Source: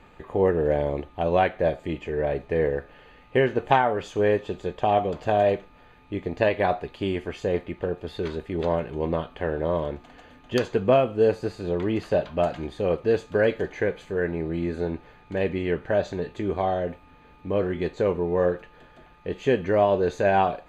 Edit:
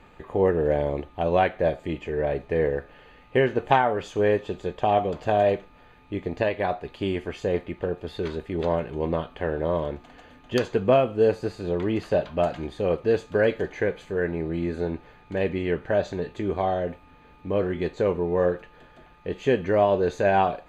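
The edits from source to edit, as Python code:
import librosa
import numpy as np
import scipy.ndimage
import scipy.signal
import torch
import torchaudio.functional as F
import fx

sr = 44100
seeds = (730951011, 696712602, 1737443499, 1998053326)

y = fx.edit(x, sr, fx.clip_gain(start_s=6.42, length_s=0.43, db=-3.0), tone=tone)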